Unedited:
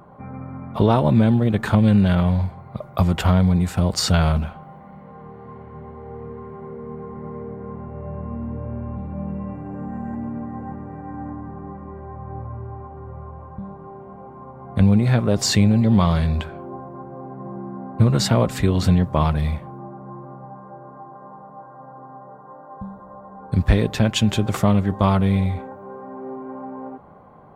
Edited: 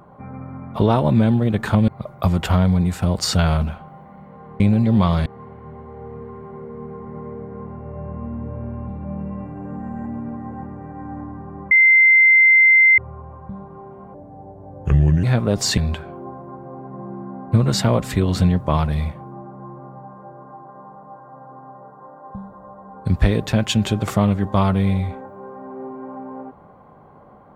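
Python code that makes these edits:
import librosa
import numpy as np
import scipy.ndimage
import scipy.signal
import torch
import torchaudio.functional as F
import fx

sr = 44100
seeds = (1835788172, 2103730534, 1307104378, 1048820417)

y = fx.edit(x, sr, fx.cut(start_s=1.88, length_s=0.75),
    fx.bleep(start_s=11.8, length_s=1.27, hz=2080.0, db=-8.5),
    fx.speed_span(start_s=14.23, length_s=0.81, speed=0.74),
    fx.move(start_s=15.58, length_s=0.66, to_s=5.35), tone=tone)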